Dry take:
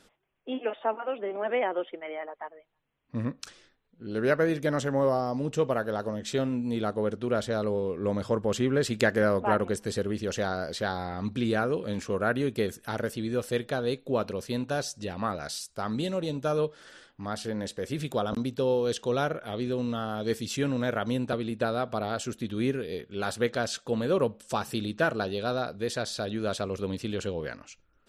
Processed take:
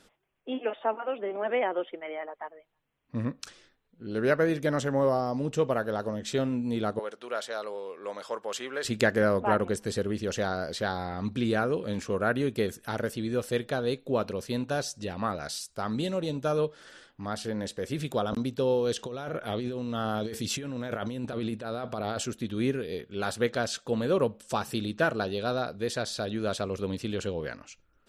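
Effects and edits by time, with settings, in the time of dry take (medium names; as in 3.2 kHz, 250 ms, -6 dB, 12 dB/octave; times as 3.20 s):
6.99–8.85 s: high-pass 710 Hz
18.98–22.26 s: compressor with a negative ratio -33 dBFS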